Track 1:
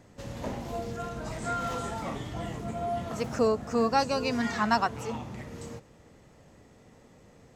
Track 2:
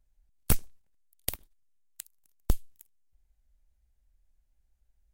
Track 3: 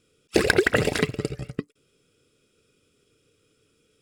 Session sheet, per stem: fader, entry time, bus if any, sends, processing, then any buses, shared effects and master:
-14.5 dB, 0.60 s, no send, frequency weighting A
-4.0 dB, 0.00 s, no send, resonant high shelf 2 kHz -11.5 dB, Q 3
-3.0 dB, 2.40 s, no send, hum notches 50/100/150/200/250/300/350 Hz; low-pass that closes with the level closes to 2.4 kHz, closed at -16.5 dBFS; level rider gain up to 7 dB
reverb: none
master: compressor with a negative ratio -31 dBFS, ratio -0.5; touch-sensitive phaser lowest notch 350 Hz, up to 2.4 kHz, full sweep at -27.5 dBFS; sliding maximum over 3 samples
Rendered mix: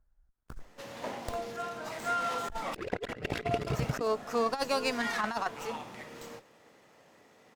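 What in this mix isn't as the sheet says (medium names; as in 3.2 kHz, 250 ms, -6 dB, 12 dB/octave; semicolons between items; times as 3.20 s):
stem 1 -14.5 dB -> -3.5 dB; stem 3: missing hum notches 50/100/150/200/250/300/350 Hz; master: missing touch-sensitive phaser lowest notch 350 Hz, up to 2.4 kHz, full sweep at -27.5 dBFS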